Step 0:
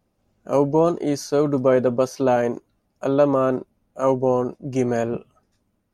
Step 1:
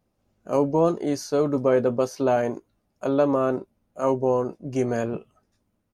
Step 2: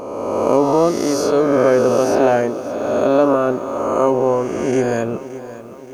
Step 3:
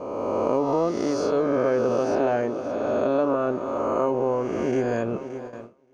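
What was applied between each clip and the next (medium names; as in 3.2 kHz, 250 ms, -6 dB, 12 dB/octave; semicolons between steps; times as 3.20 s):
doubling 18 ms -13 dB; trim -3 dB
reverse spectral sustain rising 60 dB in 1.86 s; peaking EQ 150 Hz -6 dB 0.3 oct; bit-crushed delay 573 ms, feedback 55%, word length 8-bit, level -15 dB; trim +4.5 dB
gate with hold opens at -22 dBFS; compression 2:1, threshold -18 dBFS, peak gain reduction 5.5 dB; distance through air 110 m; trim -3.5 dB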